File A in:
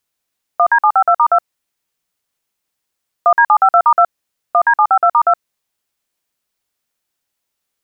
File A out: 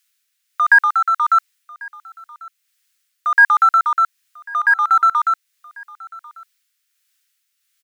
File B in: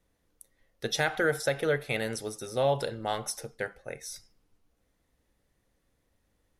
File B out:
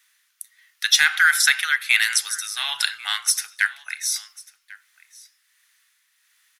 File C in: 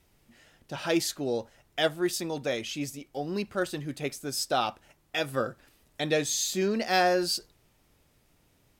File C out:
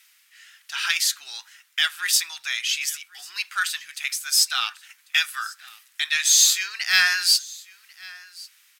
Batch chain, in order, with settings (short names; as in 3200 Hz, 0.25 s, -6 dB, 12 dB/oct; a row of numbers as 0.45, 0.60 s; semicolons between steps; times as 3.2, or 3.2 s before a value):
inverse Chebyshev high-pass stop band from 570 Hz, stop band 50 dB; in parallel at -10.5 dB: overloaded stage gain 28.5 dB; on the sum: tremolo 1.4 Hz, depth 39%; echo 1.094 s -22.5 dB; normalise peaks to -3 dBFS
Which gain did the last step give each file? +7.0, +17.0, +12.5 dB